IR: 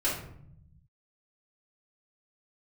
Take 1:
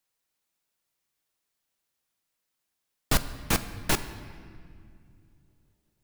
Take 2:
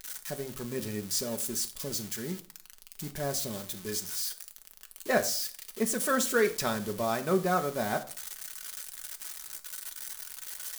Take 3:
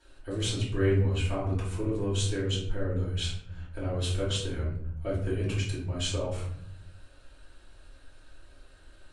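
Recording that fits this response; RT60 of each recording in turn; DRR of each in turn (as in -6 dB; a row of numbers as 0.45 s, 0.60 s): 3; no single decay rate, 0.45 s, 0.65 s; 10.0 dB, 5.0 dB, -9.0 dB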